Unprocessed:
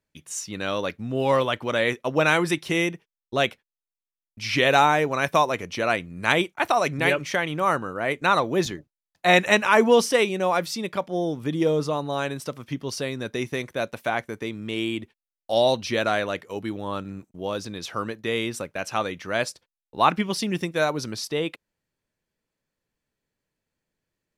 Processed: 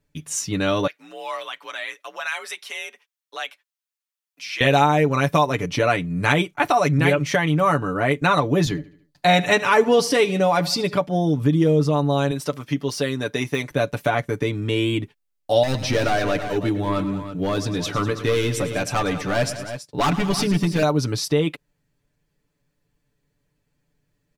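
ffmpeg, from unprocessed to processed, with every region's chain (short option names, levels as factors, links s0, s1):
-filter_complex "[0:a]asettb=1/sr,asplit=3[s0][s1][s2];[s0]atrim=end=0.874[s3];[s1]atrim=start=0.87:end=4.61,asetpts=PTS-STARTPTS,afade=t=in:d=0.004:c=qsin,afade=t=out:st=3.736:d=0.004:c=qsin,highpass=1100,afreqshift=52,acompressor=threshold=0.00282:ratio=1.5:attack=3.2:release=140:knee=1:detection=peak[s4];[s2]atrim=start=4.606[s5];[s3][s4]acrossfade=d=0.004:c1=hsin:c2=qsin[s6];[s6][s5]acrossfade=d=0.004:c1=qsin:c2=hsin,asettb=1/sr,asplit=3[s7][s8][s9];[s7]atrim=end=8.694[s10];[s8]atrim=start=8.69:end=10.94,asetpts=PTS-STARTPTS,afade=t=in:d=0.004:c=qsin,afade=t=out:st=2.246:d=0.004:c=qsin,equalizer=f=4500:w=4.7:g=8,aecho=1:1:74|148|222|296:0.1|0.048|0.023|0.0111,atrim=end_sample=99225[s11];[s9]atrim=start=10.936[s12];[s10][s11]acrossfade=d=0.004:c1=hsin:c2=qsin[s13];[s13][s12]acrossfade=d=0.004:c1=qsin:c2=hsin,asettb=1/sr,asplit=3[s14][s15][s16];[s14]atrim=end=12.314[s17];[s15]atrim=start=12.31:end=13.71,asetpts=PTS-STARTPTS,afade=t=in:d=0.004:c=qsin,afade=t=out:st=1.396:d=0.004:c=qsin,deesser=0.7,highpass=f=390:p=1[s18];[s16]atrim=start=13.706[s19];[s17][s18]acrossfade=d=0.004:c1=hsin:c2=qsin[s20];[s20][s19]acrossfade=d=0.004:c1=qsin:c2=hsin,asettb=1/sr,asplit=3[s21][s22][s23];[s21]atrim=end=15.634[s24];[s22]atrim=start=15.63:end=20.83,asetpts=PTS-STARTPTS,afade=t=in:d=0.004:c=qsin,afade=t=out:st=5.196:d=0.004:c=qsin,highpass=51,volume=12.6,asoftclip=hard,volume=0.0794,aecho=1:1:107|198|329:0.188|0.168|0.237,atrim=end_sample=229320[s25];[s23]atrim=start=20.826[s26];[s24][s25]acrossfade=d=0.004:c1=hsin:c2=qsin[s27];[s27][s26]acrossfade=d=0.004:c1=qsin:c2=hsin,lowshelf=f=260:g=10.5,aecho=1:1:6.9:0.72,acompressor=threshold=0.0794:ratio=2,volume=1.58"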